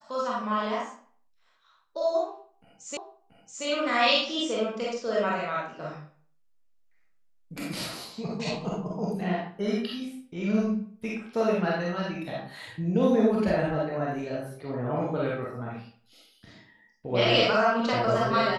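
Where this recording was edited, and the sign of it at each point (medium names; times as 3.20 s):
2.97 s: repeat of the last 0.68 s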